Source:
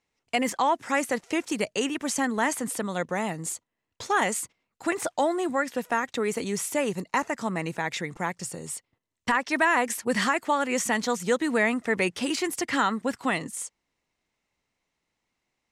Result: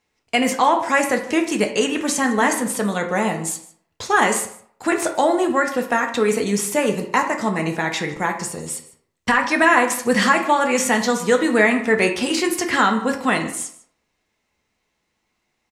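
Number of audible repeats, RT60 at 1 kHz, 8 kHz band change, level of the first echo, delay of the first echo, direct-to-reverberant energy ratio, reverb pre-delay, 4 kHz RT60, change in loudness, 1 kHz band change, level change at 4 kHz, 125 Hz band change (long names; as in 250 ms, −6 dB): 1, 0.65 s, +7.0 dB, −19.0 dB, 153 ms, 3.0 dB, 3 ms, 0.45 s, +8.0 dB, +7.5 dB, +7.5 dB, +7.5 dB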